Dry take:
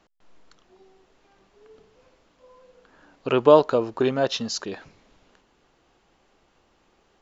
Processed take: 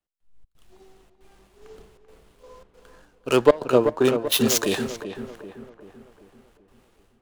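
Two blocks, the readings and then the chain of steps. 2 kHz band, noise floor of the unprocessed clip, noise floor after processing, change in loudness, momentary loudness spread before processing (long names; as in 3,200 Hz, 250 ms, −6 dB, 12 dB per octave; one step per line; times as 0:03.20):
+4.5 dB, −65 dBFS, −63 dBFS, +0.5 dB, 21 LU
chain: running median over 9 samples
high-shelf EQ 4,600 Hz +12 dB
automatic gain control gain up to 15 dB
in parallel at −10 dB: sine wavefolder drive 7 dB, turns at −0.5 dBFS
on the sum: gate pattern "xxxx.xxxxx.xxx" 137 BPM −24 dB
on a send: feedback echo with a low-pass in the loop 387 ms, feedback 66%, low-pass 2,400 Hz, level −6 dB
on the sum: multiband upward and downward expander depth 70%
level −8.5 dB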